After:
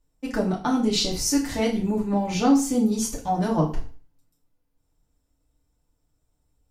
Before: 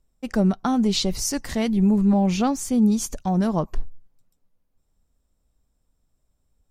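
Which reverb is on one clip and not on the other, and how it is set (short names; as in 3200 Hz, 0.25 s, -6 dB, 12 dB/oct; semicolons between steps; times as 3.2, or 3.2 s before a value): FDN reverb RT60 0.4 s, low-frequency decay 1×, high-frequency decay 0.95×, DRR -4 dB; gain -4.5 dB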